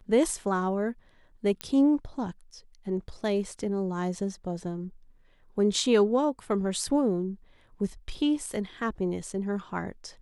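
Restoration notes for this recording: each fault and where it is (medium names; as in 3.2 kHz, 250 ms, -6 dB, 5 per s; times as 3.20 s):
1.61 s: pop -15 dBFS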